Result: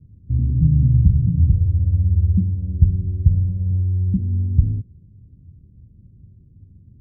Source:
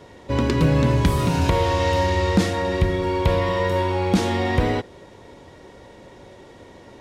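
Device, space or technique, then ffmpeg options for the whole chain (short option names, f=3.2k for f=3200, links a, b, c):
the neighbour's flat through the wall: -af "lowpass=f=170:w=0.5412,lowpass=f=170:w=1.3066,equalizer=f=87:t=o:w=0.99:g=5,volume=3.5dB"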